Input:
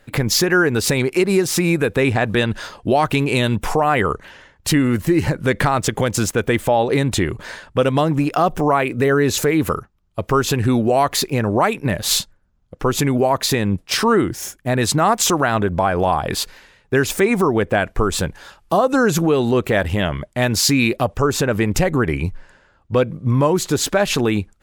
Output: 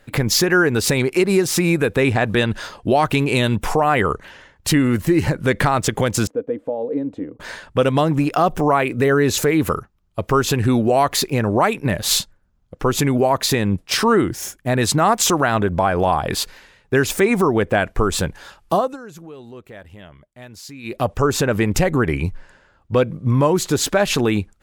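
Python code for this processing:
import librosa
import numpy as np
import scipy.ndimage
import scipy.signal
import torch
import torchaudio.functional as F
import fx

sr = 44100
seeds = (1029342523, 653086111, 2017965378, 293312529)

y = fx.double_bandpass(x, sr, hz=370.0, octaves=0.72, at=(6.27, 7.4))
y = fx.edit(y, sr, fx.fade_down_up(start_s=18.73, length_s=2.34, db=-21.5, fade_s=0.24), tone=tone)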